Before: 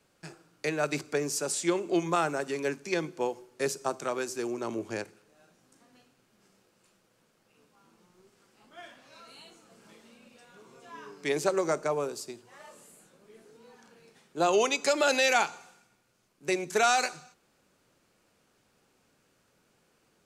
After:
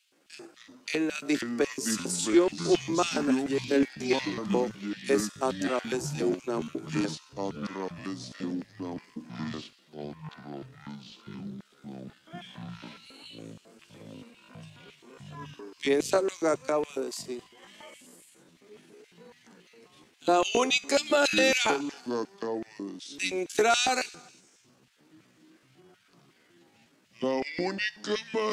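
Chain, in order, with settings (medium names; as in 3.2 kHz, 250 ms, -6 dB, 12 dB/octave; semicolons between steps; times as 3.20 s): LFO high-pass square 5.1 Hz 270–3000 Hz; ever faster or slower copies 105 ms, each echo -5 st, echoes 3, each echo -6 dB; tempo 0.71×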